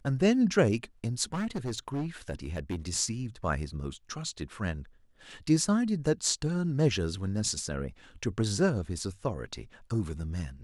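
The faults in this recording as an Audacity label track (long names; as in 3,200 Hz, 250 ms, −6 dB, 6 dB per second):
1.330000	2.760000	clipping −28.5 dBFS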